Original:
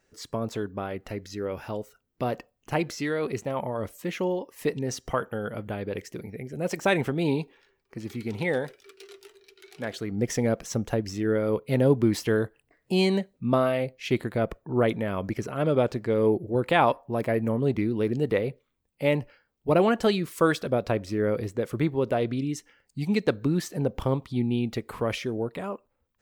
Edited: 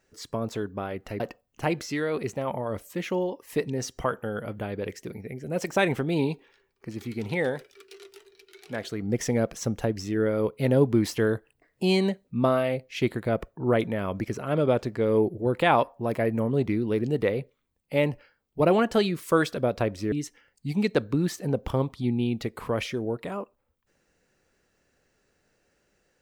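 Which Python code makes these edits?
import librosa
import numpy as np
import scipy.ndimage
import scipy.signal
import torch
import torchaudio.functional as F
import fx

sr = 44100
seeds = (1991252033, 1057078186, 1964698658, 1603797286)

y = fx.edit(x, sr, fx.cut(start_s=1.2, length_s=1.09),
    fx.cut(start_s=21.21, length_s=1.23), tone=tone)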